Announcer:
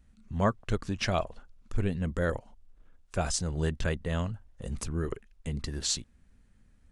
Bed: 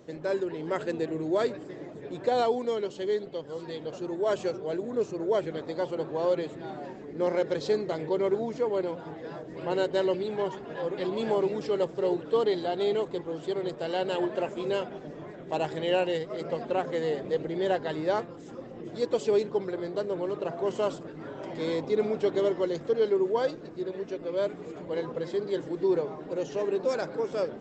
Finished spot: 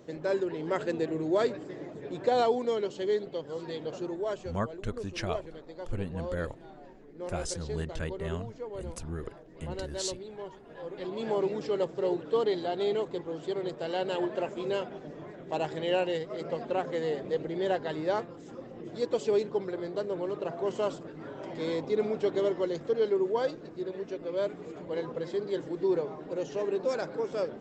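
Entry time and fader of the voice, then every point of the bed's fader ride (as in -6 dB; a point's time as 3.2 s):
4.15 s, -5.5 dB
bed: 4.02 s 0 dB
4.53 s -11.5 dB
10.63 s -11.5 dB
11.42 s -2 dB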